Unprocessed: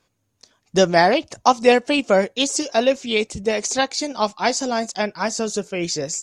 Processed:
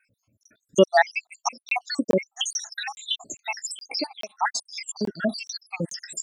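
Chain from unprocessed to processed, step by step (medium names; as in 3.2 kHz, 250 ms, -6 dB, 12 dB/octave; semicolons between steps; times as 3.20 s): random holes in the spectrogram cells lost 83%; in parallel at +2.5 dB: compression, threshold -35 dBFS, peak gain reduction 21.5 dB; on the sum: crackling interface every 0.42 s, samples 1024, zero, from 0.43 s; cancelling through-zero flanger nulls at 0.35 Hz, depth 3 ms; trim +1.5 dB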